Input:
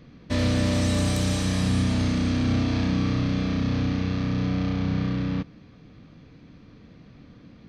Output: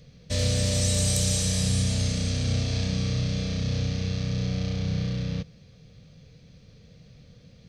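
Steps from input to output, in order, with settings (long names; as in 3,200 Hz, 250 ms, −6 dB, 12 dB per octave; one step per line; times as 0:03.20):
drawn EQ curve 160 Hz 0 dB, 310 Hz −17 dB, 490 Hz +1 dB, 710 Hz −6 dB, 1,000 Hz −13 dB, 7,700 Hz +11 dB, 12,000 Hz +6 dB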